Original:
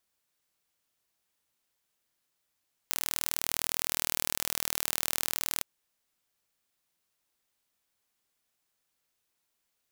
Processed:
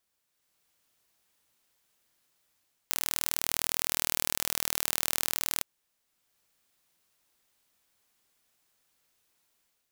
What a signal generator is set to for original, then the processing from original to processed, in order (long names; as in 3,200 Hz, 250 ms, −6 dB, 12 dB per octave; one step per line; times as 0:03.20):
impulse train 39.6 per second, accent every 0, −2.5 dBFS 2.72 s
automatic gain control gain up to 6.5 dB